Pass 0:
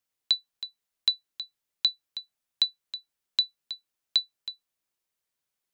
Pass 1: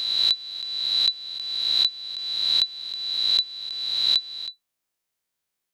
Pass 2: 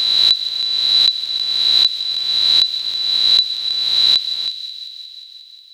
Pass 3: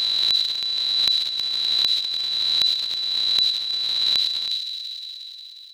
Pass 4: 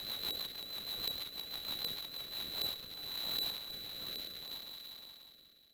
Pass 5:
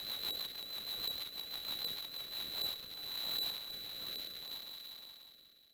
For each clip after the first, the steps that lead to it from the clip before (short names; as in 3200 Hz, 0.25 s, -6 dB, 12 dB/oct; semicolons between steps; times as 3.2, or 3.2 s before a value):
spectral swells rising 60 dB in 1.69 s
in parallel at -1 dB: limiter -20 dBFS, peak gain reduction 11 dB; on the sum: thin delay 0.179 s, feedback 75%, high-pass 2900 Hz, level -11 dB; gain +5 dB
in parallel at +3 dB: compressor, threshold -24 dBFS, peak gain reduction 15 dB; on the sum: transient shaper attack -10 dB, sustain +11 dB; gain -9.5 dB
median filter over 9 samples; rotary speaker horn 6.3 Hz, later 0.65 Hz, at 2.08; gain -9 dB
low shelf 460 Hz -4 dB; soft clip -25 dBFS, distortion -24 dB